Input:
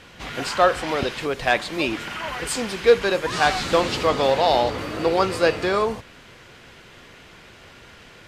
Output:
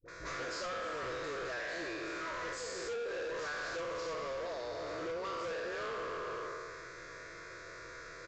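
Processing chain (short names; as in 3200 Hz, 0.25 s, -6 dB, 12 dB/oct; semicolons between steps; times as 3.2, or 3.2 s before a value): spectral trails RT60 1.79 s; gate with hold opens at -37 dBFS; low shelf 220 Hz -8.5 dB; comb 6.1 ms, depth 31%; compressor 6:1, threshold -30 dBFS, peak gain reduction 20 dB; fixed phaser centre 810 Hz, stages 6; dispersion highs, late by 58 ms, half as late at 630 Hz; overloaded stage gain 35 dB; downsampling 16000 Hz; gain -1.5 dB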